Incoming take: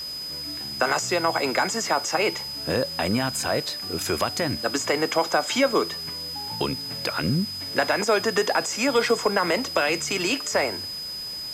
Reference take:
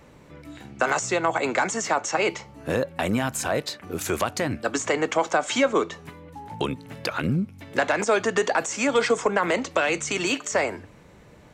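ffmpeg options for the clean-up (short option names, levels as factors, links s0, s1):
-af "adeclick=t=4,bandreject=f=5000:w=30,afwtdn=0.0063"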